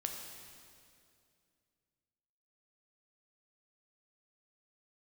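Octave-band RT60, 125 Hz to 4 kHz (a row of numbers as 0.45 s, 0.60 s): 2.9 s, 2.8 s, 2.6 s, 2.2 s, 2.1 s, 2.1 s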